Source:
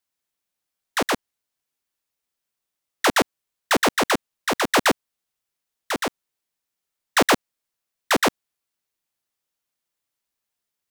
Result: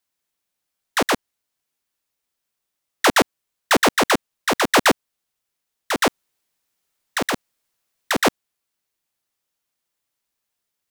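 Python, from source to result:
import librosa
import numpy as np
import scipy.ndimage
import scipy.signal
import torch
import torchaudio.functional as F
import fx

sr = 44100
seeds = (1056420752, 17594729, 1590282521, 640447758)

y = fx.over_compress(x, sr, threshold_db=-22.0, ratio=-1.0, at=(6.01, 8.25))
y = y * librosa.db_to_amplitude(3.0)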